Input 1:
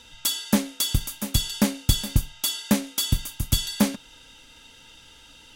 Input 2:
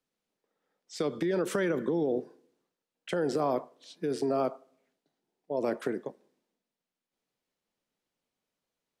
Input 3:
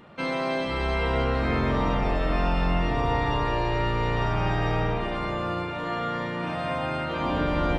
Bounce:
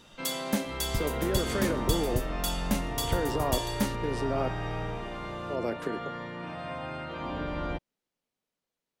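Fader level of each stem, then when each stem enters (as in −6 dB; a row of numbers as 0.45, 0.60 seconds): −8.5, −2.0, −8.5 decibels; 0.00, 0.00, 0.00 seconds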